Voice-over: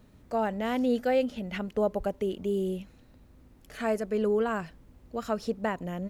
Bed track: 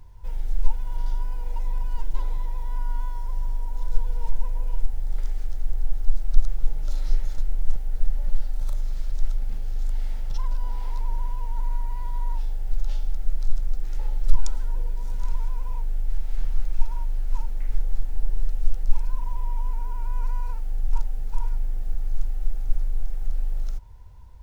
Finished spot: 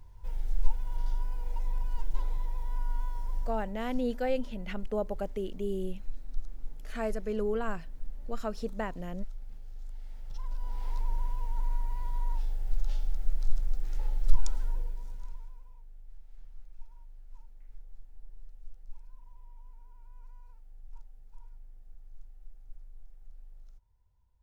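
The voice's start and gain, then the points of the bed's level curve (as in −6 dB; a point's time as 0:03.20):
3.15 s, −5.0 dB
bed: 0:03.38 −5 dB
0:03.82 −16.5 dB
0:10.02 −16.5 dB
0:10.91 −4.5 dB
0:14.69 −4.5 dB
0:15.75 −24.5 dB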